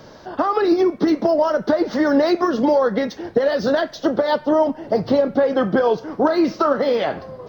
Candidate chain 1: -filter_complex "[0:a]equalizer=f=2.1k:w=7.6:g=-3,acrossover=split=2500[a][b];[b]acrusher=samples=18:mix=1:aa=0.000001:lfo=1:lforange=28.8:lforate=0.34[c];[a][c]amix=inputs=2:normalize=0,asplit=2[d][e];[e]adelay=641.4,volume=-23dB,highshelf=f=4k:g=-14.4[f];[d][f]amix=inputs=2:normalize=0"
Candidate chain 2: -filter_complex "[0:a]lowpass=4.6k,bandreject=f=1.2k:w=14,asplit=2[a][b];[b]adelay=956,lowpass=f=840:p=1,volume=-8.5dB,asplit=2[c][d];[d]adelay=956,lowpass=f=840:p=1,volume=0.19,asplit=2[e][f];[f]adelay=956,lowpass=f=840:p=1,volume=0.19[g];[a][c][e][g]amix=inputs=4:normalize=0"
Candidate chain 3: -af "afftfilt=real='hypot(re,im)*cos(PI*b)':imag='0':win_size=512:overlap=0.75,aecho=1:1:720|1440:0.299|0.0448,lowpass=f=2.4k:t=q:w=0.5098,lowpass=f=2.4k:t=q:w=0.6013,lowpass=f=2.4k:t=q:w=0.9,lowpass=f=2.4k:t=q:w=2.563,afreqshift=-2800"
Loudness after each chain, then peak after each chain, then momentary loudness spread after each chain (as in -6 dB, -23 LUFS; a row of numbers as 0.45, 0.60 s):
-19.0, -18.5, -18.5 LUFS; -6.0, -5.5, -6.5 dBFS; 5, 4, 7 LU